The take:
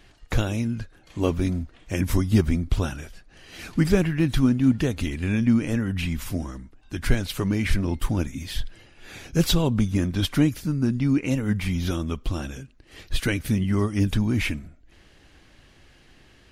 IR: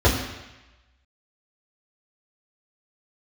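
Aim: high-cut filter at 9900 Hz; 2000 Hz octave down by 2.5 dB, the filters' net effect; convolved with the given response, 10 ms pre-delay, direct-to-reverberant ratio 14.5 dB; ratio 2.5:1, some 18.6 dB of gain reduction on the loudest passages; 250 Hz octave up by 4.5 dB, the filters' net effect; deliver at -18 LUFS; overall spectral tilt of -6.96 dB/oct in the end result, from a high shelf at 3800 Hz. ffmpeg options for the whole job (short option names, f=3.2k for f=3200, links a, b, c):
-filter_complex "[0:a]lowpass=9.9k,equalizer=f=250:t=o:g=5.5,equalizer=f=2k:t=o:g=-4,highshelf=f=3.8k:g=3,acompressor=threshold=-40dB:ratio=2.5,asplit=2[a][b];[1:a]atrim=start_sample=2205,adelay=10[c];[b][c]afir=irnorm=-1:irlink=0,volume=-34.5dB[d];[a][d]amix=inputs=2:normalize=0,volume=18dB"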